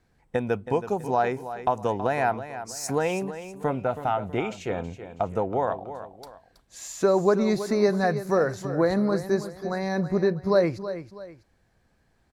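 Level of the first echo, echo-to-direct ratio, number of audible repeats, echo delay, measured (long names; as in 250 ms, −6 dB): −12.0 dB, −11.5 dB, 2, 324 ms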